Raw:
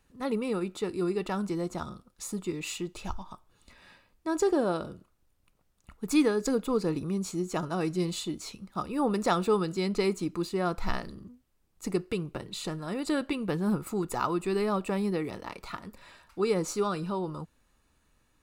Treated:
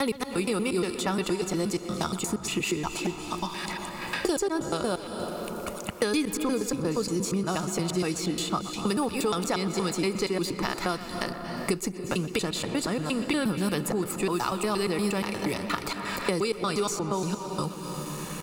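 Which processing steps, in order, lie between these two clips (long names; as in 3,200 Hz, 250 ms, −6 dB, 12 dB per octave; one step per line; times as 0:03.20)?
slices reordered back to front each 118 ms, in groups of 3
noise gate with hold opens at −59 dBFS
high-shelf EQ 2,300 Hz +9 dB
notch filter 3,900 Hz, Q 22
in parallel at +1.5 dB: brickwall limiter −20.5 dBFS, peak gain reduction 9.5 dB
on the sum: far-end echo of a speakerphone 120 ms, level −14 dB
on a send at −11.5 dB: convolution reverb RT60 1.6 s, pre-delay 222 ms
on the sum: multiband upward and downward compressor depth 100%
level −5.5 dB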